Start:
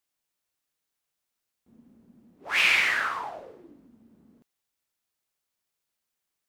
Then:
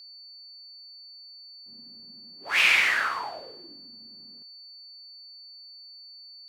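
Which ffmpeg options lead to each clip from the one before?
ffmpeg -i in.wav -af "aeval=exprs='val(0)+0.00501*sin(2*PI*4500*n/s)':channel_layout=same,lowshelf=frequency=440:gain=-4,volume=1.5dB" out.wav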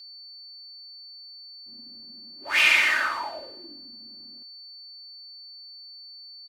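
ffmpeg -i in.wav -af "aecho=1:1:3.3:0.64" out.wav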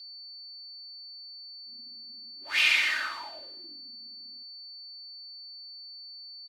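ffmpeg -i in.wav -af "equalizer=frequency=125:width_type=o:width=1:gain=-8,equalizer=frequency=500:width_type=o:width=1:gain=-5,equalizer=frequency=1000:width_type=o:width=1:gain=-3,equalizer=frequency=4000:width_type=o:width=1:gain=7,volume=-6.5dB" out.wav

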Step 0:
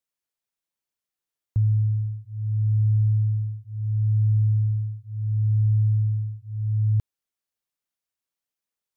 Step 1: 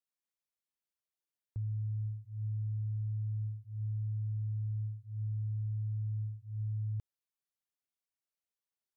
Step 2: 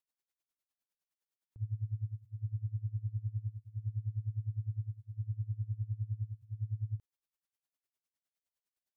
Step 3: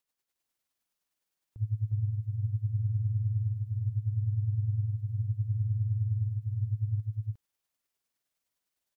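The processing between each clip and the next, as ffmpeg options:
ffmpeg -i in.wav -af "alimiter=limit=-23.5dB:level=0:latency=1,volume=-8.5dB" out.wav
ffmpeg -i in.wav -af "aeval=exprs='val(0)*pow(10,-22*(0.5-0.5*cos(2*PI*9.8*n/s))/20)':channel_layout=same,volume=4dB" out.wav
ffmpeg -i in.wav -af "aecho=1:1:356:0.708,volume=6dB" out.wav

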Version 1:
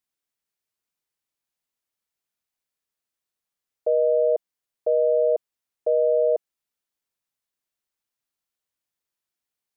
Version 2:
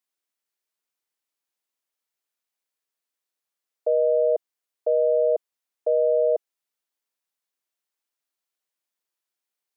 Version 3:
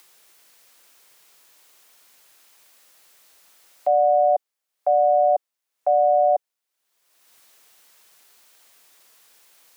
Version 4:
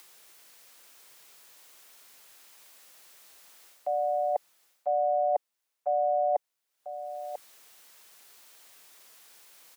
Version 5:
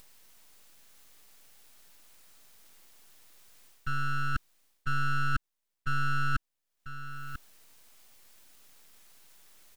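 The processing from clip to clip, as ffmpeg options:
ffmpeg -i in.wav -af "highpass=290" out.wav
ffmpeg -i in.wav -af "acompressor=mode=upward:threshold=-36dB:ratio=2.5,afreqshift=110,volume=3dB" out.wav
ffmpeg -i in.wav -af "areverse,acompressor=threshold=-26dB:ratio=6,areverse,aecho=1:1:993:0.316" out.wav
ffmpeg -i in.wav -af "highpass=frequency=800:width_type=q:width=1.5,aeval=exprs='abs(val(0))':channel_layout=same,volume=-1dB" out.wav

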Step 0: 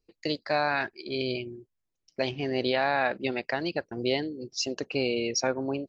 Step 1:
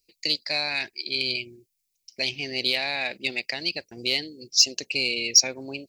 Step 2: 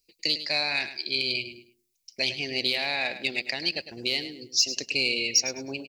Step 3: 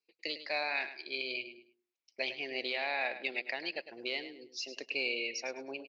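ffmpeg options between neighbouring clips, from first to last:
ffmpeg -i in.wav -af "highshelf=frequency=1800:width_type=q:width=3:gain=9,aeval=exprs='0.75*(cos(1*acos(clip(val(0)/0.75,-1,1)))-cos(1*PI/2))+0.0168*(cos(5*acos(clip(val(0)/0.75,-1,1)))-cos(5*PI/2))':channel_layout=same,aexciter=amount=4.4:drive=3.2:freq=4200,volume=-7dB" out.wav
ffmpeg -i in.wav -af "alimiter=limit=-11.5dB:level=0:latency=1:release=174,aecho=1:1:104|208|312:0.251|0.0628|0.0157" out.wav
ffmpeg -i in.wav -af "highpass=430,lowpass=2100,volume=-2dB" out.wav

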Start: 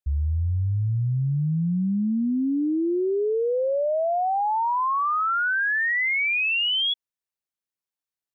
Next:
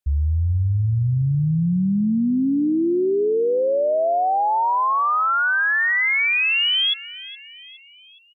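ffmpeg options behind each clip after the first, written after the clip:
ffmpeg -i in.wav -af "aecho=1:1:416|832|1248|1664:0.133|0.0653|0.032|0.0157,volume=4dB" out.wav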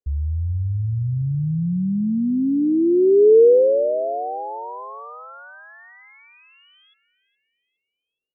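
ffmpeg -i in.wav -af "lowpass=frequency=460:width_type=q:width=4.3,volume=-3.5dB" out.wav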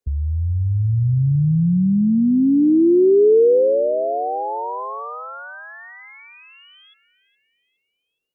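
ffmpeg -i in.wav -filter_complex "[0:a]acrossover=split=110|400[link_01][link_02][link_03];[link_01]acompressor=threshold=-31dB:ratio=4[link_04];[link_02]acompressor=threshold=-22dB:ratio=4[link_05];[link_03]acompressor=threshold=-28dB:ratio=4[link_06];[link_04][link_05][link_06]amix=inputs=3:normalize=0,volume=6.5dB" out.wav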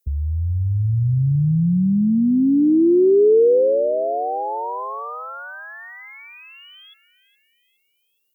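ffmpeg -i in.wav -af "aemphasis=mode=production:type=75fm" out.wav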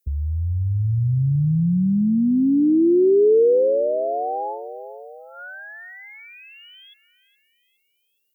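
ffmpeg -i in.wav -af "asuperstop=centerf=1100:order=20:qfactor=2,volume=-1.5dB" out.wav

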